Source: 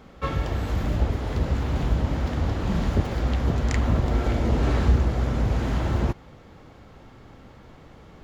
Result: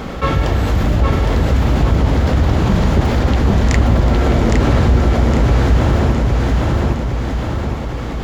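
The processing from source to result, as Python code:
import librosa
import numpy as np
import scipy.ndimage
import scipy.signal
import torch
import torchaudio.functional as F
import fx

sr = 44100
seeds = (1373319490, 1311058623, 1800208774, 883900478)

y = fx.echo_feedback(x, sr, ms=812, feedback_pct=36, wet_db=-3.0)
y = fx.env_flatten(y, sr, amount_pct=50)
y = y * librosa.db_to_amplitude(5.5)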